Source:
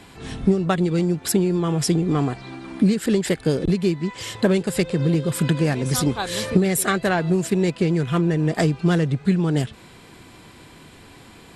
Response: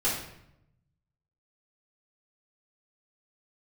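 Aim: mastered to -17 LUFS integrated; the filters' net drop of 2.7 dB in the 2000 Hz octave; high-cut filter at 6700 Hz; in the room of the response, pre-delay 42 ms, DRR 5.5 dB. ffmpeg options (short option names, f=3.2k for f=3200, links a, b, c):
-filter_complex "[0:a]lowpass=6.7k,equalizer=f=2k:t=o:g=-3.5,asplit=2[a][b];[1:a]atrim=start_sample=2205,adelay=42[c];[b][c]afir=irnorm=-1:irlink=0,volume=-15dB[d];[a][d]amix=inputs=2:normalize=0,volume=3dB"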